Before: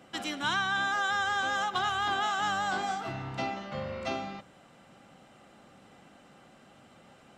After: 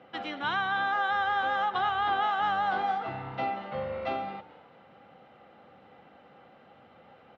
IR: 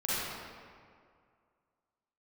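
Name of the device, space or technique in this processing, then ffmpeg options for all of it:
frequency-shifting delay pedal into a guitar cabinet: -filter_complex "[0:a]asplit=4[link_01][link_02][link_03][link_04];[link_02]adelay=217,afreqshift=98,volume=-19dB[link_05];[link_03]adelay=434,afreqshift=196,volume=-28.4dB[link_06];[link_04]adelay=651,afreqshift=294,volume=-37.7dB[link_07];[link_01][link_05][link_06][link_07]amix=inputs=4:normalize=0,highpass=78,equalizer=frequency=80:width_type=q:width=4:gain=7,equalizer=frequency=490:width_type=q:width=4:gain=9,equalizer=frequency=800:width_type=q:width=4:gain=7,equalizer=frequency=1300:width_type=q:width=4:gain=4,equalizer=frequency=2000:width_type=q:width=4:gain=3,lowpass=frequency=3800:width=0.5412,lowpass=frequency=3800:width=1.3066,volume=-3dB"

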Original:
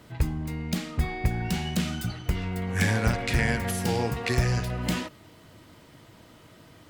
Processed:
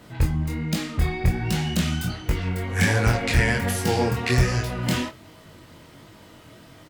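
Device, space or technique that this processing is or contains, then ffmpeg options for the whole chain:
double-tracked vocal: -filter_complex "[0:a]asplit=2[link_01][link_02];[link_02]adelay=25,volume=-8.5dB[link_03];[link_01][link_03]amix=inputs=2:normalize=0,flanger=delay=19:depth=5.7:speed=1.3,volume=7dB"

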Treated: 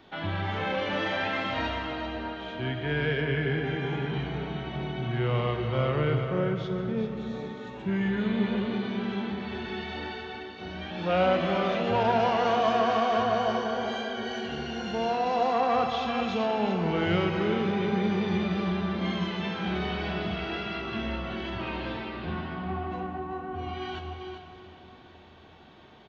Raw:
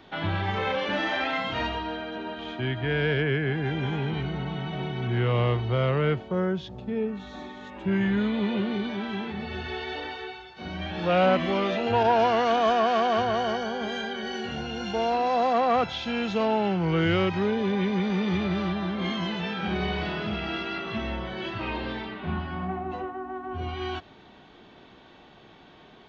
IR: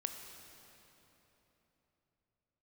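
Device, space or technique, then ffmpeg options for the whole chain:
cave: -filter_complex "[0:a]aecho=1:1:391:0.376[link_01];[1:a]atrim=start_sample=2205[link_02];[link_01][link_02]afir=irnorm=-1:irlink=0,volume=-2dB"

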